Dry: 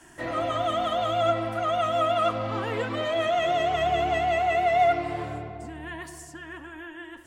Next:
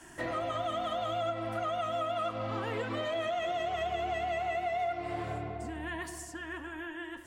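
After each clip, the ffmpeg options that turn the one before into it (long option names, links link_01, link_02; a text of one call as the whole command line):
ffmpeg -i in.wav -af "bandreject=frequency=145.9:width_type=h:width=4,bandreject=frequency=291.8:width_type=h:width=4,bandreject=frequency=437.7:width_type=h:width=4,bandreject=frequency=583.6:width_type=h:width=4,bandreject=frequency=729.5:width_type=h:width=4,bandreject=frequency=875.4:width_type=h:width=4,bandreject=frequency=1021.3:width_type=h:width=4,bandreject=frequency=1167.2:width_type=h:width=4,bandreject=frequency=1313.1:width_type=h:width=4,bandreject=frequency=1459:width_type=h:width=4,bandreject=frequency=1604.9:width_type=h:width=4,bandreject=frequency=1750.8:width_type=h:width=4,bandreject=frequency=1896.7:width_type=h:width=4,bandreject=frequency=2042.6:width_type=h:width=4,bandreject=frequency=2188.5:width_type=h:width=4,bandreject=frequency=2334.4:width_type=h:width=4,bandreject=frequency=2480.3:width_type=h:width=4,bandreject=frequency=2626.2:width_type=h:width=4,bandreject=frequency=2772.1:width_type=h:width=4,bandreject=frequency=2918:width_type=h:width=4,bandreject=frequency=3063.9:width_type=h:width=4,bandreject=frequency=3209.8:width_type=h:width=4,bandreject=frequency=3355.7:width_type=h:width=4,bandreject=frequency=3501.6:width_type=h:width=4,bandreject=frequency=3647.5:width_type=h:width=4,bandreject=frequency=3793.4:width_type=h:width=4,bandreject=frequency=3939.3:width_type=h:width=4,acompressor=threshold=-32dB:ratio=4" out.wav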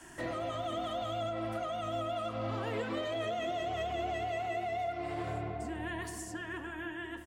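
ffmpeg -i in.wav -filter_complex "[0:a]acrossover=split=580|3100[link_01][link_02][link_03];[link_01]aecho=1:1:513|1026|1539|2052|2565|3078|3591:0.447|0.246|0.135|0.0743|0.0409|0.0225|0.0124[link_04];[link_02]alimiter=level_in=11dB:limit=-24dB:level=0:latency=1,volume=-11dB[link_05];[link_04][link_05][link_03]amix=inputs=3:normalize=0" out.wav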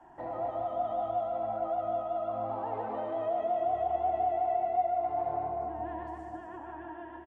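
ffmpeg -i in.wav -af "lowpass=frequency=820:width_type=q:width=7,crystalizer=i=6.5:c=0,aecho=1:1:150|262.5|346.9|410.2|457.6:0.631|0.398|0.251|0.158|0.1,volume=-8dB" out.wav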